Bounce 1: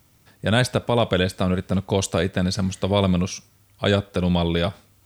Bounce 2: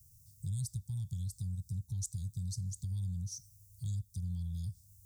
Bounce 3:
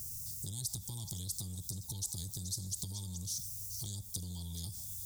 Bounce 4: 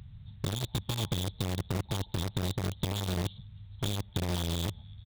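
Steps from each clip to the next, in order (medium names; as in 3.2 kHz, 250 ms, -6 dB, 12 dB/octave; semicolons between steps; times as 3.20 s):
inverse Chebyshev band-stop 300–2700 Hz, stop band 50 dB; peaking EQ 870 Hz +13 dB 0.24 oct; compression 2.5:1, threshold -38 dBFS, peak gain reduction 10.5 dB; trim -1 dB
peak limiter -37 dBFS, peak gain reduction 11 dB; repeats whose band climbs or falls 143 ms, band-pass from 770 Hz, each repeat 1.4 oct, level -8 dB; spectrum-flattening compressor 2:1; trim +16.5 dB
resampled via 8 kHz; in parallel at -7 dB: companded quantiser 2-bit; on the sum: trim +6 dB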